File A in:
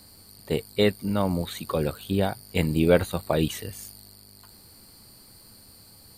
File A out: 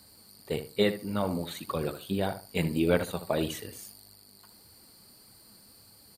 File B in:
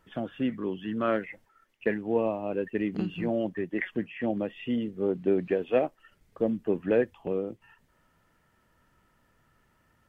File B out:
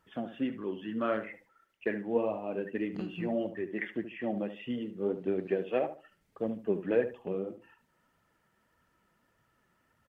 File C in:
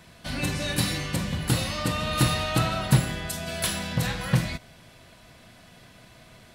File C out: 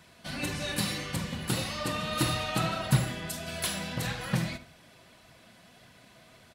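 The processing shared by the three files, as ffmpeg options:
ffmpeg -i in.wav -filter_complex "[0:a]highpass=frequency=110:poles=1,flanger=delay=0.6:depth=5.6:regen=49:speed=1.7:shape=triangular,asplit=2[link_01][link_02];[link_02]adelay=73,lowpass=frequency=2000:poles=1,volume=-10.5dB,asplit=2[link_03][link_04];[link_04]adelay=73,lowpass=frequency=2000:poles=1,volume=0.24,asplit=2[link_05][link_06];[link_06]adelay=73,lowpass=frequency=2000:poles=1,volume=0.24[link_07];[link_01][link_03][link_05][link_07]amix=inputs=4:normalize=0" out.wav

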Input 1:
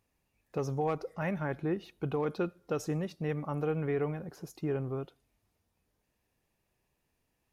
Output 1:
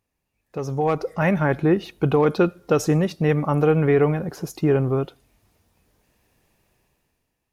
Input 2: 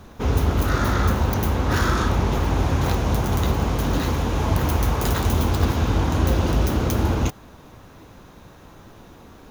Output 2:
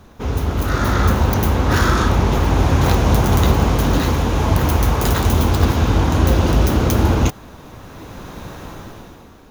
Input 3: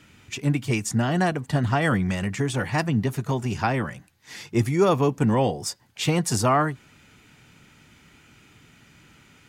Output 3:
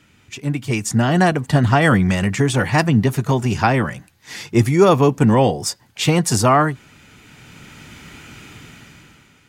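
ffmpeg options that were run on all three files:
ffmpeg -i in.wav -af "dynaudnorm=framelen=150:gausssize=11:maxgain=15dB,volume=-1dB" out.wav

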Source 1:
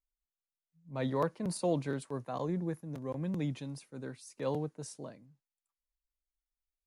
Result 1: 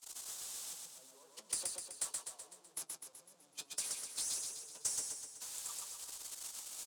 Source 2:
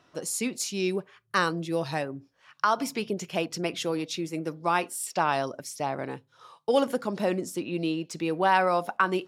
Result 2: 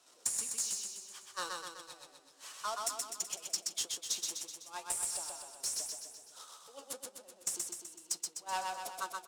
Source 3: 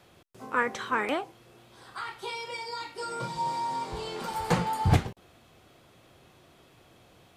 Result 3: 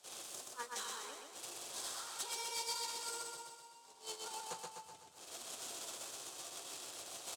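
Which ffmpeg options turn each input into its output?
ffmpeg -i in.wav -filter_complex "[0:a]aeval=exprs='val(0)+0.5*0.0531*sgn(val(0))':channel_layout=same,highpass=78,aemphasis=mode=production:type=riaa,agate=range=-34dB:threshold=-14dB:ratio=16:detection=peak,equalizer=frequency=125:width_type=o:width=1:gain=-11,equalizer=frequency=250:width_type=o:width=1:gain=-3,equalizer=frequency=2000:width_type=o:width=1:gain=-10,equalizer=frequency=8000:width_type=o:width=1:gain=9,acompressor=threshold=-24dB:ratio=8,flanger=delay=6.8:depth=2.9:regen=63:speed=1.8:shape=triangular,acrossover=split=430|3200[link_01][link_02][link_03];[link_02]acrusher=bits=3:mode=log:mix=0:aa=0.000001[link_04];[link_01][link_04][link_03]amix=inputs=3:normalize=0,adynamicsmooth=sensitivity=2:basefreq=4600,aecho=1:1:126|252|378|504|630|756|882|1008:0.708|0.389|0.214|0.118|0.0648|0.0356|0.0196|0.0108,volume=3dB" out.wav

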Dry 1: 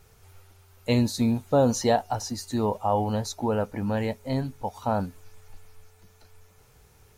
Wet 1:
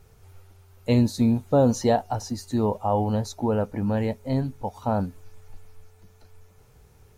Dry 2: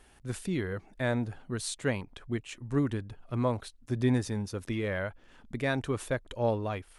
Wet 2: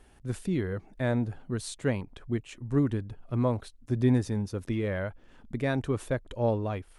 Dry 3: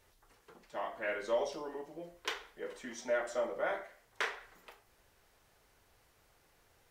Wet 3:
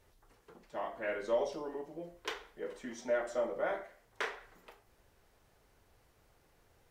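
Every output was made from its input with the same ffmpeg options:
ffmpeg -i in.wav -af "tiltshelf=frequency=760:gain=3.5" out.wav

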